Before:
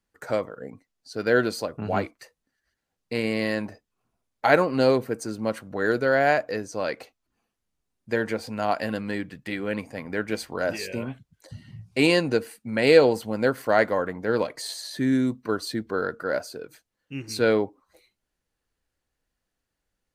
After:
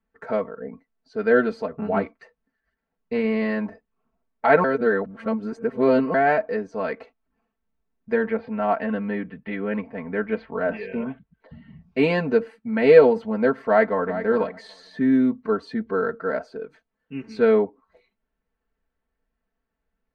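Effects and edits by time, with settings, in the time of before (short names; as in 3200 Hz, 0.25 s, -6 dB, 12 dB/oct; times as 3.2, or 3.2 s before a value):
4.64–6.14 reverse
8.24–11.77 LPF 3600 Hz 24 dB/oct
13.63–14.18 echo throw 0.39 s, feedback 10%, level -12 dB
whole clip: LPF 1900 Hz 12 dB/oct; comb 4.5 ms, depth 90%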